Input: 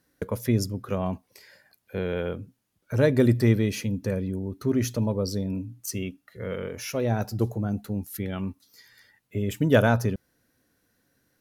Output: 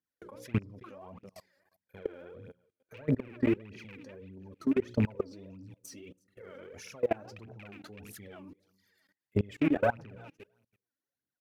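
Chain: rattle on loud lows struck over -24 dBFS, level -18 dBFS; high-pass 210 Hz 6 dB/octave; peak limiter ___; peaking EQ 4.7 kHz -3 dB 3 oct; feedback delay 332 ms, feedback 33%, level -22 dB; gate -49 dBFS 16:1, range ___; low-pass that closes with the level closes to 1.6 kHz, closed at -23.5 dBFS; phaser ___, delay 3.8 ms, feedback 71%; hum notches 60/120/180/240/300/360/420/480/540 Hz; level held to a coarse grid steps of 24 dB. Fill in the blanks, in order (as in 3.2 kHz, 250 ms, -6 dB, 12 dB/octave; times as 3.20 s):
-14 dBFS, -13 dB, 1.6 Hz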